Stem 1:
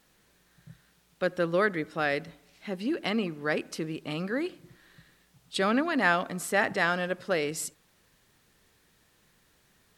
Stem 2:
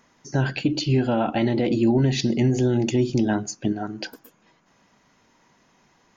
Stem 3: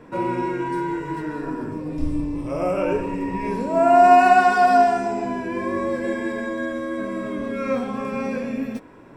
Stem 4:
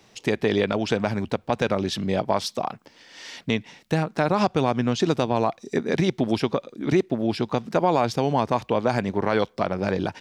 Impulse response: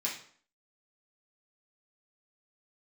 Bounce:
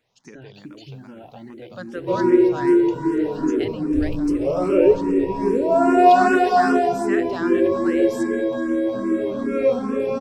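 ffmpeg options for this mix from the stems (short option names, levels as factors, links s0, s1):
-filter_complex "[0:a]adelay=550,volume=0.708[s0];[1:a]volume=0.282[s1];[2:a]firequalizer=gain_entry='entry(210,0);entry(370,13);entry(680,-1);entry(2200,-3);entry(3600,1);entry(8400,-1)':delay=0.05:min_phase=1,adelay=1950,volume=1.26[s2];[3:a]volume=0.158[s3];[s1][s3]amix=inputs=2:normalize=0,acompressor=threshold=0.0141:ratio=2,volume=1[s4];[s0][s2][s4]amix=inputs=3:normalize=0,asplit=2[s5][s6];[s6]afreqshift=2.5[s7];[s5][s7]amix=inputs=2:normalize=1"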